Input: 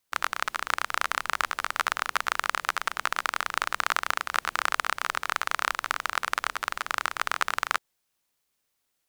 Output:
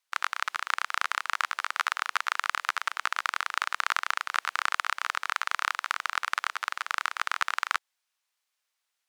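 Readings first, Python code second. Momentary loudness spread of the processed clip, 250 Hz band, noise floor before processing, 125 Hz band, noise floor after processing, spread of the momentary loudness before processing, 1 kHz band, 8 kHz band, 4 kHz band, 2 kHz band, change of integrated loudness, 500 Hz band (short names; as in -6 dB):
2 LU, under -15 dB, -78 dBFS, n/a, -82 dBFS, 2 LU, -1.5 dB, -3.5 dB, -1.0 dB, -0.5 dB, -1.0 dB, -8.5 dB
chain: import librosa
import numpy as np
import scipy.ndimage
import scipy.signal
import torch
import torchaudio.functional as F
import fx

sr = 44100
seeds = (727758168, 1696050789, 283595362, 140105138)

y = scipy.signal.sosfilt(scipy.signal.butter(2, 930.0, 'highpass', fs=sr, output='sos'), x)
y = fx.high_shelf(y, sr, hz=10000.0, db=-12.0)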